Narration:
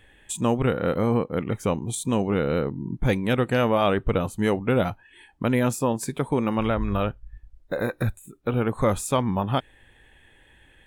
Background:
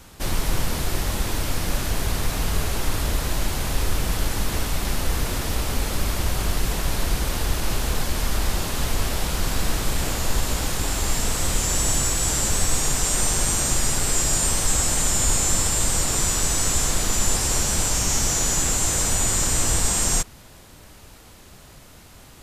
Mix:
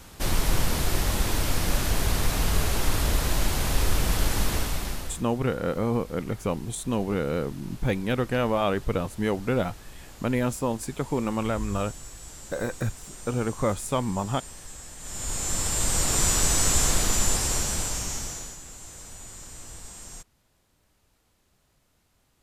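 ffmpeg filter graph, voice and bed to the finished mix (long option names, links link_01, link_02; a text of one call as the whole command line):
ffmpeg -i stem1.wav -i stem2.wav -filter_complex "[0:a]adelay=4800,volume=-3.5dB[link_01];[1:a]volume=20.5dB,afade=type=out:start_time=4.44:duration=0.8:silence=0.0891251,afade=type=in:start_time=14.99:duration=1.29:silence=0.0891251,afade=type=out:start_time=16.9:duration=1.68:silence=0.0891251[link_02];[link_01][link_02]amix=inputs=2:normalize=0" out.wav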